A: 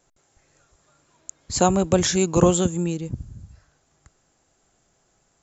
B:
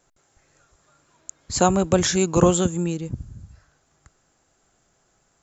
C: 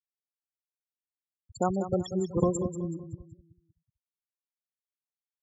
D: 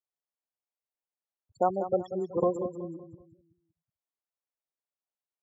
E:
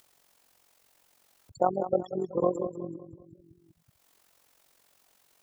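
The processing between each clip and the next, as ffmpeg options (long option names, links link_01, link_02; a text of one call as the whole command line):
ffmpeg -i in.wav -af "equalizer=frequency=1400:width_type=o:width=0.77:gain=3" out.wav
ffmpeg -i in.wav -af "afftfilt=real='re*gte(hypot(re,im),0.282)':imag='im*gte(hypot(re,im),0.282)':win_size=1024:overlap=0.75,aecho=1:1:188|376|564|752:0.282|0.0986|0.0345|0.0121,volume=-9dB" out.wav
ffmpeg -i in.wav -af "bandpass=frequency=670:width_type=q:width=1.3:csg=0,volume=4.5dB" out.wav
ffmpeg -i in.wav -af "acompressor=mode=upward:threshold=-42dB:ratio=2.5,tremolo=f=45:d=0.71,volume=3.5dB" out.wav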